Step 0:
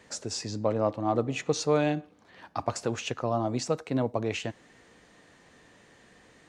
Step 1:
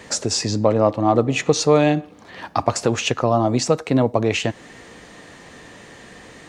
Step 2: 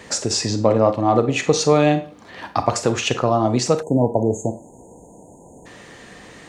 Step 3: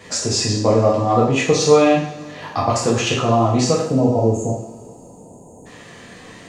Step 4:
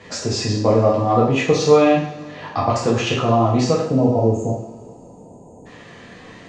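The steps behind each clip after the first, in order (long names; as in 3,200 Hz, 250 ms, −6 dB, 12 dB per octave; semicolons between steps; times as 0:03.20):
notch filter 1,500 Hz, Q 22; in parallel at +2.5 dB: downward compressor, threshold −35 dBFS, peak gain reduction 15 dB; on the sum: level +7.5 dB
four-comb reverb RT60 0.3 s, combs from 32 ms, DRR 9.5 dB; time-frequency box erased 0:03.82–0:05.66, 1,000–6,300 Hz
coupled-rooms reverb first 0.6 s, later 3.1 s, from −22 dB, DRR −5 dB; level −4.5 dB
high-frequency loss of the air 100 metres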